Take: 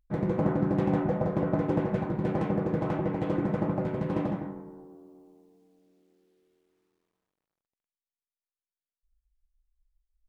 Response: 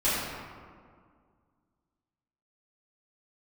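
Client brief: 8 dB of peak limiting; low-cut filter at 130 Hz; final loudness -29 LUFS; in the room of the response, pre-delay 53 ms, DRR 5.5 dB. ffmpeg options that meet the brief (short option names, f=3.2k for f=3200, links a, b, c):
-filter_complex "[0:a]highpass=130,alimiter=limit=-21.5dB:level=0:latency=1,asplit=2[a][b];[1:a]atrim=start_sample=2205,adelay=53[c];[b][c]afir=irnorm=-1:irlink=0,volume=-18.5dB[d];[a][d]amix=inputs=2:normalize=0,volume=1dB"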